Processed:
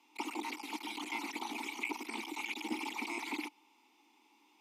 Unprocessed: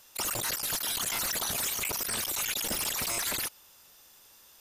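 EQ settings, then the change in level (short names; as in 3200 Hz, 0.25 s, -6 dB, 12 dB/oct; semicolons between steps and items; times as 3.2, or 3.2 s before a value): vowel filter u; Chebyshev high-pass 220 Hz, order 5; +11.5 dB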